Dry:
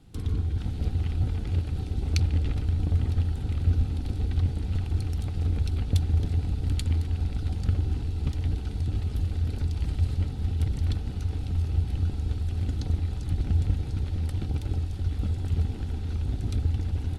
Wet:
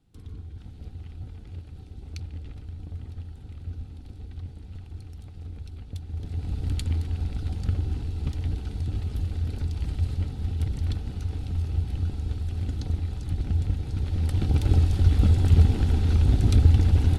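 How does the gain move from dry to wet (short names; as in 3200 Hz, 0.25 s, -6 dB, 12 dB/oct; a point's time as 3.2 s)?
6.03 s -12.5 dB
6.55 s -1 dB
13.81 s -1 dB
14.77 s +9 dB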